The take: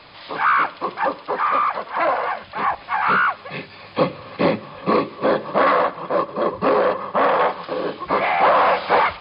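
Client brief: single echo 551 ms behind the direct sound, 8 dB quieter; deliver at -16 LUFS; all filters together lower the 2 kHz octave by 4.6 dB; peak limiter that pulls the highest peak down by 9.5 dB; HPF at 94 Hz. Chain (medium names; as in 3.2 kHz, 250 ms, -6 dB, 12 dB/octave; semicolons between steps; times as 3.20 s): high-pass 94 Hz; peaking EQ 2 kHz -6.5 dB; peak limiter -15 dBFS; delay 551 ms -8 dB; trim +8.5 dB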